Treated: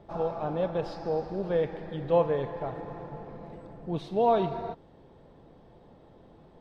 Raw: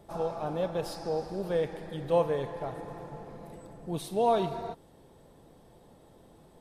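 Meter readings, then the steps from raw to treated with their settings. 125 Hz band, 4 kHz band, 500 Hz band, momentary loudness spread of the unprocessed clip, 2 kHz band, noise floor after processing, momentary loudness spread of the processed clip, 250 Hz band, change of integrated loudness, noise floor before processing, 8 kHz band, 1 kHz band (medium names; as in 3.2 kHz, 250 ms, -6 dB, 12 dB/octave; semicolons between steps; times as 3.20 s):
+2.5 dB, -3.0 dB, +2.0 dB, 18 LU, +0.5 dB, -55 dBFS, 18 LU, +2.0 dB, +2.0 dB, -57 dBFS, under -15 dB, +1.5 dB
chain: distance through air 200 m; trim +2.5 dB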